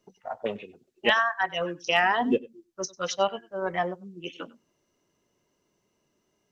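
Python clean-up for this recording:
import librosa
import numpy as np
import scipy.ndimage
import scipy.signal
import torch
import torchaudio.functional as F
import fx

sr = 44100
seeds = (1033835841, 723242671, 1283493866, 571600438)

y = fx.fix_declip(x, sr, threshold_db=-10.0)
y = fx.fix_echo_inverse(y, sr, delay_ms=97, level_db=-22.0)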